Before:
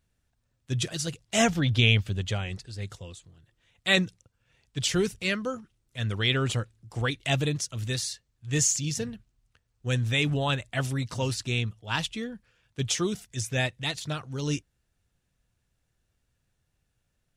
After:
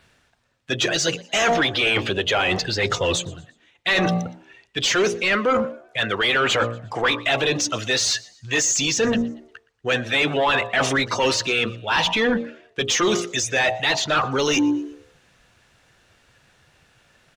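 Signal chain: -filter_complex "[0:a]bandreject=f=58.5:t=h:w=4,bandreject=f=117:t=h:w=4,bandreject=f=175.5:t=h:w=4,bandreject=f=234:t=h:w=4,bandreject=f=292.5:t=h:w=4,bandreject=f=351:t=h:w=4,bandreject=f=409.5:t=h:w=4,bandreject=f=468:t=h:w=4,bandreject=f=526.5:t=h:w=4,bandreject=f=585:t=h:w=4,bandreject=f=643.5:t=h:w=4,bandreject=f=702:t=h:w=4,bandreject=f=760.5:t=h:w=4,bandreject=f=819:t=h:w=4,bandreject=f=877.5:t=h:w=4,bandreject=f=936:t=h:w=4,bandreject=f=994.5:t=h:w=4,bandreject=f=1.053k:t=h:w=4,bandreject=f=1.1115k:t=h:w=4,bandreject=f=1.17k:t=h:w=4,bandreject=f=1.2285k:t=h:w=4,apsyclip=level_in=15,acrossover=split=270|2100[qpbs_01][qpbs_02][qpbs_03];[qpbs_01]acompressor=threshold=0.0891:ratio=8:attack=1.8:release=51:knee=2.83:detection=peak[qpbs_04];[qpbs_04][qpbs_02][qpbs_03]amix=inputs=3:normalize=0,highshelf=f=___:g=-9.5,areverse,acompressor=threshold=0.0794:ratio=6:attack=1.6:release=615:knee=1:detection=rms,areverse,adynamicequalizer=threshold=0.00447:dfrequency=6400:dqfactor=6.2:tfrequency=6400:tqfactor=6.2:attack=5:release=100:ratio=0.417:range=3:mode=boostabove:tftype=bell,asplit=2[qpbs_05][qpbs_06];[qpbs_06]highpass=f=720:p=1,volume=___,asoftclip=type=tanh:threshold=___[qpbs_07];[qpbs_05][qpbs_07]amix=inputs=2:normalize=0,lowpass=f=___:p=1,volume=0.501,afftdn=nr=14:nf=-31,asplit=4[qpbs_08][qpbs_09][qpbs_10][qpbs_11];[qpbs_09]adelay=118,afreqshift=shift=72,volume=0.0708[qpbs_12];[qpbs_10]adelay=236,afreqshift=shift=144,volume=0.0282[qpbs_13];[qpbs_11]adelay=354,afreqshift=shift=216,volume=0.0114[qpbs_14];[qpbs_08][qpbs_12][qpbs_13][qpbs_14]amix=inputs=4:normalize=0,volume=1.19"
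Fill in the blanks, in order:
8.4k, 12.6, 0.251, 3.9k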